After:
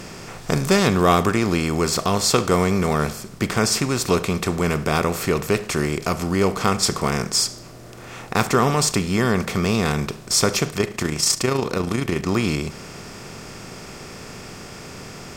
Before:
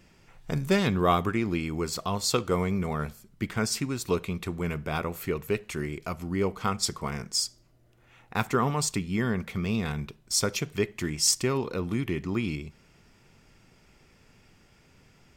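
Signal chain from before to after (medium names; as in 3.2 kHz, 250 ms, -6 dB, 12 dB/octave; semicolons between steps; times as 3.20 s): spectral levelling over time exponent 0.6; 10.70–12.27 s: AM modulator 28 Hz, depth 35%; trim +4.5 dB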